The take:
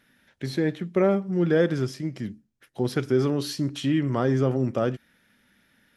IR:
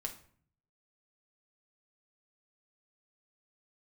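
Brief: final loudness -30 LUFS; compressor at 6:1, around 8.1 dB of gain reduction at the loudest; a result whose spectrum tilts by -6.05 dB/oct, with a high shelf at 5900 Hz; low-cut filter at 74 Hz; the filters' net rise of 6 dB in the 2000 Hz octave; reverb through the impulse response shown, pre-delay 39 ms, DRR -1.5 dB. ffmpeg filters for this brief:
-filter_complex "[0:a]highpass=74,equalizer=f=2k:t=o:g=8.5,highshelf=f=5.9k:g=-8.5,acompressor=threshold=-24dB:ratio=6,asplit=2[a][b];[1:a]atrim=start_sample=2205,adelay=39[c];[b][c]afir=irnorm=-1:irlink=0,volume=2.5dB[d];[a][d]amix=inputs=2:normalize=0,volume=-4dB"

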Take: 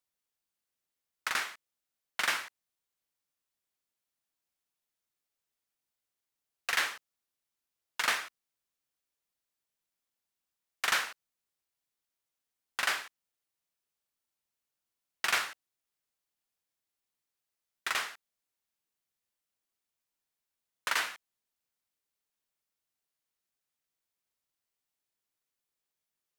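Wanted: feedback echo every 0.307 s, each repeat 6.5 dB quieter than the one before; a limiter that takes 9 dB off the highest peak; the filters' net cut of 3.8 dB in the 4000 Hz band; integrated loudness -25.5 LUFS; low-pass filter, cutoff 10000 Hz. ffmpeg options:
-af "lowpass=10k,equalizer=f=4k:t=o:g=-5,alimiter=level_in=0.5dB:limit=-24dB:level=0:latency=1,volume=-0.5dB,aecho=1:1:307|614|921|1228|1535|1842:0.473|0.222|0.105|0.0491|0.0231|0.0109,volume=15dB"

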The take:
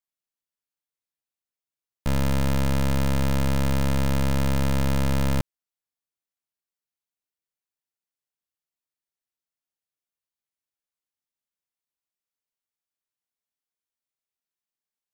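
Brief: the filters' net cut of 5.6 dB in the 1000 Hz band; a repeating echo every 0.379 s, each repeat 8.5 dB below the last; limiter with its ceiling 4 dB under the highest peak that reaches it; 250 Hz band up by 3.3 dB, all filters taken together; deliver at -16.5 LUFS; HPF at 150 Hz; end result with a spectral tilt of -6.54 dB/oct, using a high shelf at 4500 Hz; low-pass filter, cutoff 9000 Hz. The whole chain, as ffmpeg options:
-af "highpass=150,lowpass=9k,equalizer=f=250:t=o:g=6,equalizer=f=1k:t=o:g=-7,highshelf=f=4.5k:g=-4.5,alimiter=limit=-17.5dB:level=0:latency=1,aecho=1:1:379|758|1137|1516:0.376|0.143|0.0543|0.0206,volume=12.5dB"

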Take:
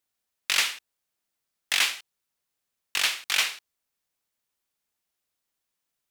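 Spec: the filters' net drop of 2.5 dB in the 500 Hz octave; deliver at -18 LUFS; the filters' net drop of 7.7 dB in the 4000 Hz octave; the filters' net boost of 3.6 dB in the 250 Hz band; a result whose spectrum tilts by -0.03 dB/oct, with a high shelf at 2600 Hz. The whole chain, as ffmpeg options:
-af "equalizer=f=250:t=o:g=6.5,equalizer=f=500:t=o:g=-4.5,highshelf=f=2.6k:g=-5,equalizer=f=4k:t=o:g=-6,volume=12.5dB"

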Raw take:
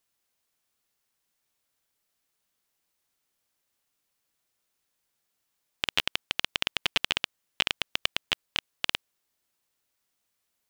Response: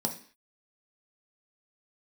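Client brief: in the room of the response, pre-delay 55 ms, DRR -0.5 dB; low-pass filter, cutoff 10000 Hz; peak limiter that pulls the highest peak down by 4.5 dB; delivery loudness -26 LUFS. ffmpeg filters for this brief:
-filter_complex "[0:a]lowpass=10k,alimiter=limit=-9.5dB:level=0:latency=1,asplit=2[a][b];[1:a]atrim=start_sample=2205,adelay=55[c];[b][c]afir=irnorm=-1:irlink=0,volume=-4.5dB[d];[a][d]amix=inputs=2:normalize=0,volume=6.5dB"

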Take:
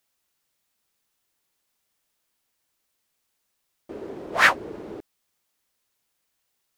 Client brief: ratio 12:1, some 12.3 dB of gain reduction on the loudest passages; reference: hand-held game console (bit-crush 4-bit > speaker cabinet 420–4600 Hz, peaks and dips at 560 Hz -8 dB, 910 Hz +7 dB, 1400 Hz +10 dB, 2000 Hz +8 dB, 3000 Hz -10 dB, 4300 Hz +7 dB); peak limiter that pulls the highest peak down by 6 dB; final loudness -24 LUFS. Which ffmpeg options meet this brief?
-af "acompressor=threshold=-24dB:ratio=12,alimiter=limit=-21dB:level=0:latency=1,acrusher=bits=3:mix=0:aa=0.000001,highpass=420,equalizer=f=560:t=q:w=4:g=-8,equalizer=f=910:t=q:w=4:g=7,equalizer=f=1.4k:t=q:w=4:g=10,equalizer=f=2k:t=q:w=4:g=8,equalizer=f=3k:t=q:w=4:g=-10,equalizer=f=4.3k:t=q:w=4:g=7,lowpass=f=4.6k:w=0.5412,lowpass=f=4.6k:w=1.3066,volume=9dB"

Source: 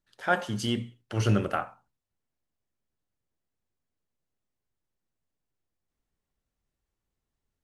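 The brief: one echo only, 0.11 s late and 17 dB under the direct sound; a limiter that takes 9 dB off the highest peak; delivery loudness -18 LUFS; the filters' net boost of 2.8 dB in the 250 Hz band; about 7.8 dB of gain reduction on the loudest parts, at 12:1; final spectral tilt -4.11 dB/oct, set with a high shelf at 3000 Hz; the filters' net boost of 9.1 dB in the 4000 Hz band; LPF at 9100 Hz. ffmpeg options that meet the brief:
-af "lowpass=9.1k,equalizer=f=250:t=o:g=3.5,highshelf=f=3k:g=7,equalizer=f=4k:t=o:g=8,acompressor=threshold=-24dB:ratio=12,alimiter=limit=-21dB:level=0:latency=1,aecho=1:1:110:0.141,volume=15.5dB"

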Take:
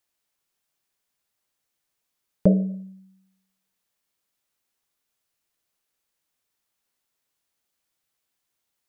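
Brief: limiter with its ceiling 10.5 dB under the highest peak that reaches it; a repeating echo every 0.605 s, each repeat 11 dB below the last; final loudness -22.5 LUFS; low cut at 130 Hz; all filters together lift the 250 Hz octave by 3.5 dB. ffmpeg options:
-af "highpass=130,equalizer=f=250:t=o:g=7,alimiter=limit=-13dB:level=0:latency=1,aecho=1:1:605|1210|1815:0.282|0.0789|0.0221,volume=4.5dB"

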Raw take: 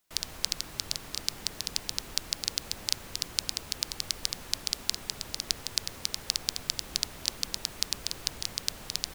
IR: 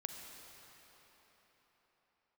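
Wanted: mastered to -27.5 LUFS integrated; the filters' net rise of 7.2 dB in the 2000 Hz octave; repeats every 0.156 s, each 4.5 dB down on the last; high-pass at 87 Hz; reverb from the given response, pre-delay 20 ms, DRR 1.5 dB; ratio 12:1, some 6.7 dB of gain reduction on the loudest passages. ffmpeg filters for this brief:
-filter_complex "[0:a]highpass=87,equalizer=f=2k:t=o:g=9,acompressor=threshold=-29dB:ratio=12,aecho=1:1:156|312|468|624|780|936|1092|1248|1404:0.596|0.357|0.214|0.129|0.0772|0.0463|0.0278|0.0167|0.01,asplit=2[a][b];[1:a]atrim=start_sample=2205,adelay=20[c];[b][c]afir=irnorm=-1:irlink=0,volume=0dB[d];[a][d]amix=inputs=2:normalize=0,volume=5dB"

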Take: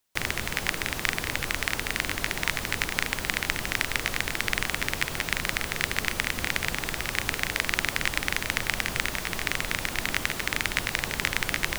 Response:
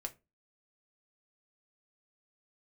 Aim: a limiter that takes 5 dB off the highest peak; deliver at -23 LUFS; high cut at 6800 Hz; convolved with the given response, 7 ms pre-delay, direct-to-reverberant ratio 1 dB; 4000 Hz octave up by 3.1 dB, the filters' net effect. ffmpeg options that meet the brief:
-filter_complex "[0:a]lowpass=6.8k,equalizer=f=4k:t=o:g=4.5,alimiter=limit=-7dB:level=0:latency=1,asplit=2[a][b];[1:a]atrim=start_sample=2205,adelay=7[c];[b][c]afir=irnorm=-1:irlink=0,volume=1dB[d];[a][d]amix=inputs=2:normalize=0,volume=3dB"

